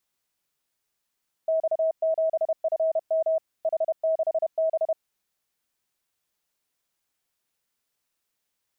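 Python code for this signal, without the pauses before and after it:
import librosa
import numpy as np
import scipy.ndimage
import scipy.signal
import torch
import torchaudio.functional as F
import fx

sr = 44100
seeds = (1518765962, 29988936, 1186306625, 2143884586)

y = fx.morse(sr, text='X7FM H6B', wpm=31, hz=643.0, level_db=-20.0)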